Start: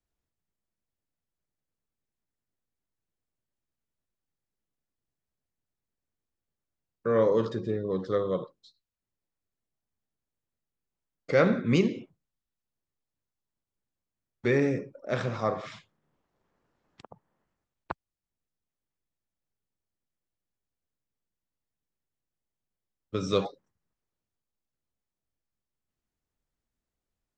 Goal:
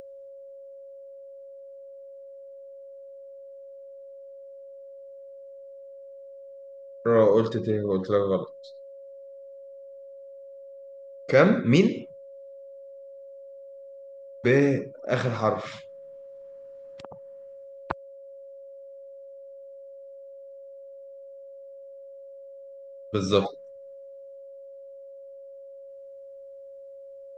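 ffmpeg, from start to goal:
ffmpeg -i in.wav -af "aeval=exprs='val(0)+0.00447*sin(2*PI*550*n/s)':channel_layout=same,acompressor=mode=upward:threshold=-47dB:ratio=2.5,volume=4.5dB" out.wav

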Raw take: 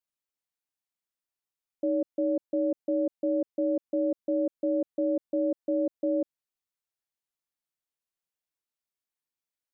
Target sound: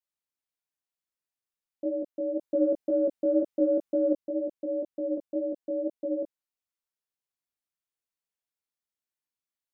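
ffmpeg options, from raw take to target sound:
ffmpeg -i in.wav -filter_complex "[0:a]asettb=1/sr,asplit=3[link_01][link_02][link_03];[link_01]atrim=end=2.394[link_04];[link_02]atrim=start=2.39:end=4.14,asetpts=PTS-STARTPTS,afade=type=in:duration=0.004:curve=qsin,afade=type=out:start_time=1.746:duration=0.004:curve=qsin,acontrast=51[link_05];[link_03]atrim=start=4.136[link_06];[link_04][link_05]acrossfade=duration=0.004:curve1=hsin:curve2=qsin[link_07];[link_07][link_06]acrossfade=duration=0.004:curve1=qsin:curve2=hsin,flanger=delay=17:depth=4.5:speed=2" out.wav

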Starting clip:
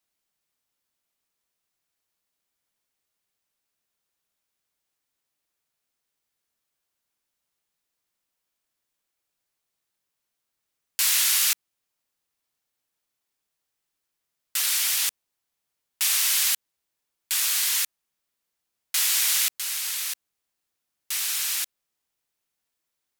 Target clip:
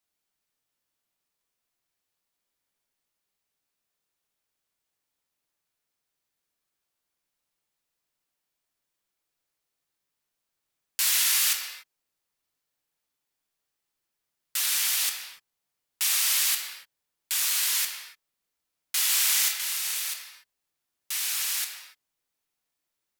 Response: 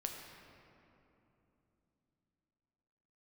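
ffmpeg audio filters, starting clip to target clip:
-filter_complex "[0:a]asettb=1/sr,asplit=3[link_01][link_02][link_03];[link_01]atrim=end=19.064[link_04];[link_02]atrim=start=19.06:end=20,asetpts=PTS-STARTPTS,afade=type=in:duration=0.004:curve=qsin,afade=type=out:start_time=0.936:duration=0.004:curve=qsin,asplit=2[link_05][link_06];[link_06]adelay=31,volume=-5.5dB[link_07];[link_05][link_07]amix=inputs=2:normalize=0,atrim=end_sample=41454[link_08];[link_03]atrim=start=19.996[link_09];[link_04][link_08]acrossfade=duration=0.004:curve1=hsin:curve2=qsin[link_10];[link_10][link_09]acrossfade=duration=0.004:curve1=qsin:curve2=hsin[link_11];[1:a]atrim=start_sample=2205,afade=type=out:start_time=0.35:duration=0.01,atrim=end_sample=15876[link_12];[link_11][link_12]afir=irnorm=-1:irlink=0"

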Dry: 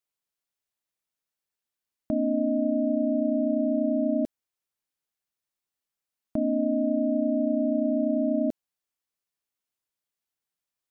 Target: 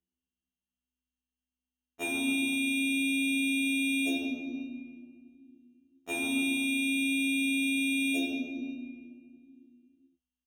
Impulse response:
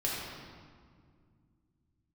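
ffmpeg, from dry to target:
-filter_complex "[0:a]bass=frequency=250:gain=-4,treble=frequency=4000:gain=-2,aeval=exprs='val(0)+0.00251*(sin(2*PI*60*n/s)+sin(2*PI*2*60*n/s)/2+sin(2*PI*3*60*n/s)/3+sin(2*PI*4*60*n/s)/4+sin(2*PI*5*60*n/s)/5)':channel_layout=same,acrusher=samples=15:mix=1:aa=0.000001,aecho=1:1:2.6:0.4,agate=range=-27dB:threshold=-42dB:ratio=16:detection=peak,highpass=frequency=180:poles=1[link_01];[1:a]atrim=start_sample=2205[link_02];[link_01][link_02]afir=irnorm=-1:irlink=0,asetrate=45938,aresample=44100,afftfilt=real='re*2*eq(mod(b,4),0)':imag='im*2*eq(mod(b,4),0)':win_size=2048:overlap=0.75"

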